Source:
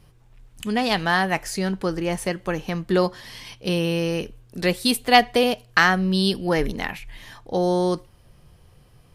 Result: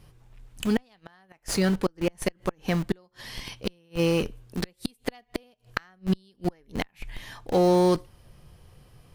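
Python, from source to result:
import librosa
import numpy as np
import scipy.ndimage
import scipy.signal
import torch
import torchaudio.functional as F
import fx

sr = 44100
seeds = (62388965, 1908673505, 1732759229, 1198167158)

p1 = fx.gate_flip(x, sr, shuts_db=-13.0, range_db=-37)
p2 = fx.schmitt(p1, sr, flips_db=-30.0)
y = p1 + (p2 * 10.0 ** (-5.0 / 20.0))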